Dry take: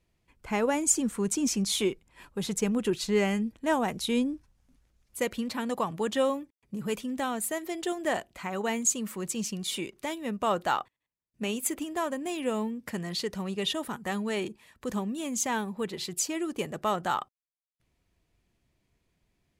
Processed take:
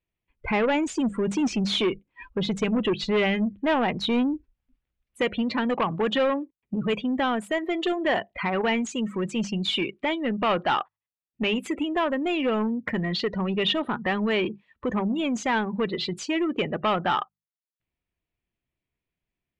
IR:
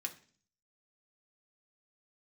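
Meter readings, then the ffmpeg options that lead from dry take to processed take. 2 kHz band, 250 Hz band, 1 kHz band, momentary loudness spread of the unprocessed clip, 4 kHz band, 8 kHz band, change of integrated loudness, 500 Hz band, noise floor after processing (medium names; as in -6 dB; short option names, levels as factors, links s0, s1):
+7.5 dB, +5.5 dB, +5.0 dB, 9 LU, +6.0 dB, -12.0 dB, +4.5 dB, +4.5 dB, under -85 dBFS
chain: -filter_complex "[0:a]bandreject=f=50:t=h:w=6,bandreject=f=100:t=h:w=6,bandreject=f=150:t=h:w=6,bandreject=f=200:t=h:w=6,afftdn=nr=26:nf=-42,asplit=2[s0][s1];[s1]acompressor=threshold=0.01:ratio=6,volume=1.33[s2];[s0][s2]amix=inputs=2:normalize=0,asoftclip=type=tanh:threshold=0.0631,lowpass=f=2900:t=q:w=1.6,volume=1.88"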